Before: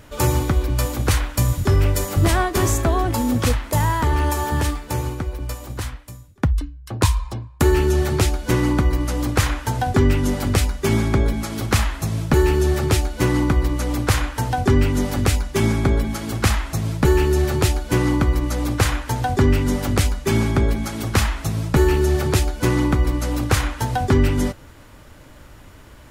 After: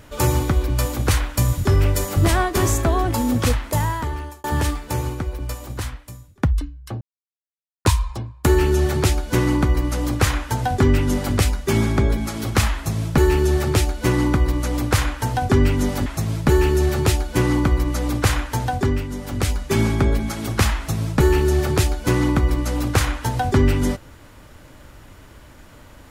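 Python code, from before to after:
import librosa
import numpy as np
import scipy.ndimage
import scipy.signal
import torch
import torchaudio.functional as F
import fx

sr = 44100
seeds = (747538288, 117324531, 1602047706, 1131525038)

y = fx.edit(x, sr, fx.fade_out_span(start_s=3.65, length_s=0.79),
    fx.insert_silence(at_s=7.01, length_s=0.84),
    fx.cut(start_s=15.22, length_s=1.4),
    fx.fade_down_up(start_s=19.17, length_s=1.05, db=-9.0, fade_s=0.46), tone=tone)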